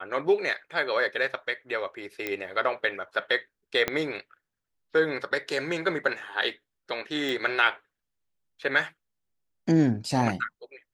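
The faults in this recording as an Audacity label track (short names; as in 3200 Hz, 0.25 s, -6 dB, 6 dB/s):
2.270000	2.270000	pop -15 dBFS
3.880000	3.880000	pop -10 dBFS
7.290000	7.290000	pop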